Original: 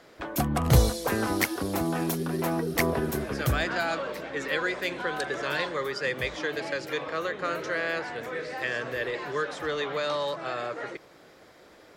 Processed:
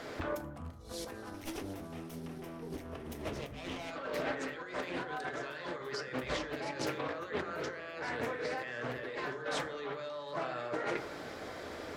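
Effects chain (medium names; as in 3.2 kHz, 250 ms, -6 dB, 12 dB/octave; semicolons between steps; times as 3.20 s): 1.34–3.91 s: comb filter that takes the minimum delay 0.35 ms; compressor with a negative ratio -41 dBFS, ratio -1; treble shelf 9.4 kHz -4 dB; reverberation RT60 0.75 s, pre-delay 6 ms, DRR 5 dB; loudspeaker Doppler distortion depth 0.38 ms; trim -1.5 dB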